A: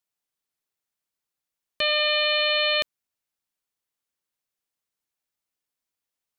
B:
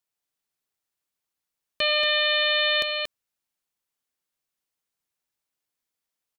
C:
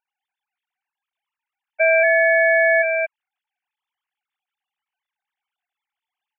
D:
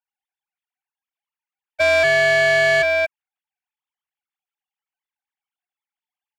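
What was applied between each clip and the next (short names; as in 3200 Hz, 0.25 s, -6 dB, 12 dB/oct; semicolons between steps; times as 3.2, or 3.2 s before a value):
echo 0.232 s -5.5 dB
sine-wave speech; gain +7 dB
sample leveller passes 2; gain -3.5 dB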